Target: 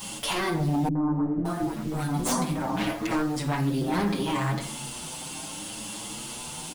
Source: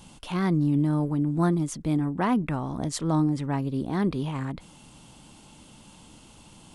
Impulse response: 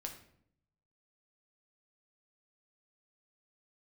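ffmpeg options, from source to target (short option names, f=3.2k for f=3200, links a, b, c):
-filter_complex "[0:a]acompressor=threshold=-30dB:ratio=4,aemphasis=mode=production:type=bsi[a];[1:a]atrim=start_sample=2205[b];[a][b]afir=irnorm=-1:irlink=0,aeval=exprs='0.188*sin(PI/2*8.91*val(0)/0.188)':c=same,acrusher=bits=5:mix=0:aa=0.000001,highshelf=f=8k:g=-7,asettb=1/sr,asplit=3[c][d][e];[c]atrim=end=0.884[f];[d]atrim=start=0.88:end=3.11,asetpts=PTS-STARTPTS,afade=t=in:d=0.004:c=qsin,afade=t=out:st=2.226:d=0.004:c=qsin,acrossover=split=400|1400[g][h][i];[h]adelay=70[j];[i]adelay=570[k];[g][j][k]amix=inputs=3:normalize=0,atrim=end_sample=98343[l];[e]atrim=start=3.106[m];[f][l]acrossfade=d=0.004:c1=hsin:c2=qsin[n];[n][m]acrossfade=d=0.004:c1=qsin:c2=hsin,asplit=2[o][p];[p]adelay=6.9,afreqshift=0.69[q];[o][q]amix=inputs=2:normalize=1,volume=-4dB"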